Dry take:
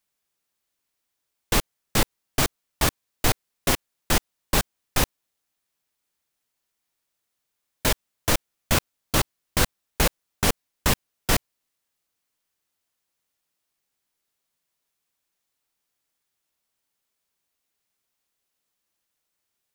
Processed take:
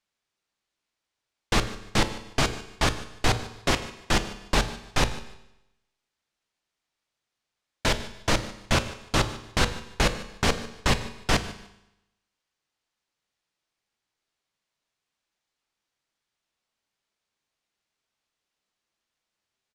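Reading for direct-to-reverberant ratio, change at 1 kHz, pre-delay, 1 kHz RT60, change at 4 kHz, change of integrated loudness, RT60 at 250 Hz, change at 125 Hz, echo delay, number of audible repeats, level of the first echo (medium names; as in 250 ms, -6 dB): 9.5 dB, +0.5 dB, 9 ms, 0.85 s, -0.5 dB, -1.5 dB, 0.90 s, 0.0 dB, 149 ms, 2, -19.0 dB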